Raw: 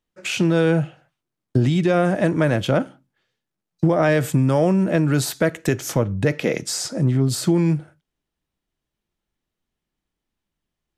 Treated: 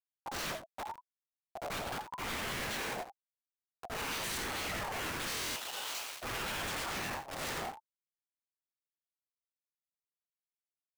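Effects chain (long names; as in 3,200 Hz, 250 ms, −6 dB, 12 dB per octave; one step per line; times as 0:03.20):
harmonic-percussive split with one part muted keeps percussive
0:03.85–0:04.56: high-shelf EQ 2,200 Hz +11 dB
convolution reverb RT60 0.35 s, pre-delay 66 ms, DRR −12 dB
gate on every frequency bin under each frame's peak −20 dB weak
0:00.50–0:01.70: downward compressor 12 to 1, threshold −37 dBFS, peak gain reduction 10.5 dB
comparator with hysteresis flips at −35 dBFS
brickwall limiter −36 dBFS, peak gain reduction 11.5 dB
0:05.34–0:06.22: Butterworth high-pass 1,600 Hz 36 dB per octave
single-tap delay 85 ms −8 dB
dead-zone distortion −54 dBFS
buffer that repeats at 0:05.28, samples 1,024, times 11
ring modulator whose carrier an LFO sweeps 850 Hz, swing 25%, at 0.87 Hz
level +2.5 dB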